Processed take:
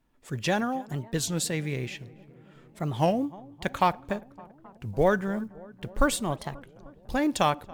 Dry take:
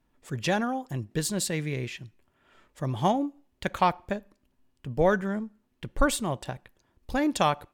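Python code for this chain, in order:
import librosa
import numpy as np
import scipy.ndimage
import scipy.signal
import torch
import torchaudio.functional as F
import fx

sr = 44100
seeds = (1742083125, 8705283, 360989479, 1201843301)

y = fx.block_float(x, sr, bits=7)
y = fx.echo_filtered(y, sr, ms=281, feedback_pct=77, hz=1500.0, wet_db=-21)
y = fx.record_warp(y, sr, rpm=33.33, depth_cents=250.0)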